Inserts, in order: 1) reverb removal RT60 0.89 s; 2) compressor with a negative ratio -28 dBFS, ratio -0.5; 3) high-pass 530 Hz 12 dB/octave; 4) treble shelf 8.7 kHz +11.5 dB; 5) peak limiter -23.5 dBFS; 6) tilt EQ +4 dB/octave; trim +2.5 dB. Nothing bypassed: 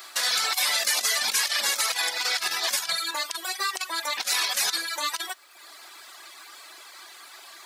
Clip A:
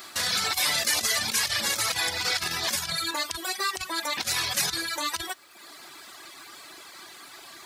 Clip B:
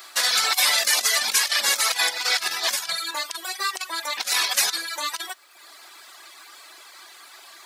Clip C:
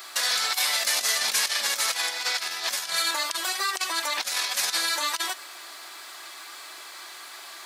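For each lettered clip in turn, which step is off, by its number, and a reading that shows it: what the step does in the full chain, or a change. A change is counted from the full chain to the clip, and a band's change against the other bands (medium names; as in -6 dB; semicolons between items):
3, 250 Hz band +10.5 dB; 5, crest factor change +2.0 dB; 1, momentary loudness spread change -4 LU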